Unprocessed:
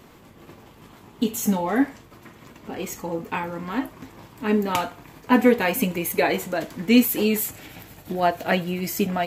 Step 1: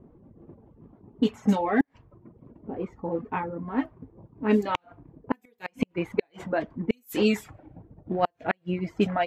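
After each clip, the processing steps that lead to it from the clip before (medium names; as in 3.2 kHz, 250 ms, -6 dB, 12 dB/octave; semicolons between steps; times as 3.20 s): level-controlled noise filter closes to 400 Hz, open at -14.5 dBFS; inverted gate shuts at -10 dBFS, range -36 dB; reverb removal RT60 0.75 s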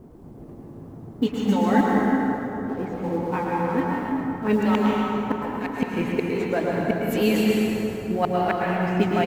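companding laws mixed up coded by mu; delay 110 ms -9.5 dB; plate-style reverb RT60 3.4 s, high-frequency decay 0.6×, pre-delay 110 ms, DRR -3 dB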